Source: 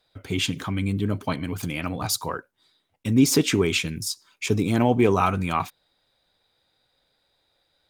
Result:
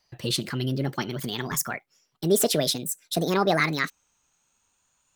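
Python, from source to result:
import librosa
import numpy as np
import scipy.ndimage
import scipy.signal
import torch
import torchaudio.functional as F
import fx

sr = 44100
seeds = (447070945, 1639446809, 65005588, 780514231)

y = fx.speed_glide(x, sr, from_pct=125, to_pct=181)
y = fx.peak_eq(y, sr, hz=500.0, db=-3.5, octaves=3.0)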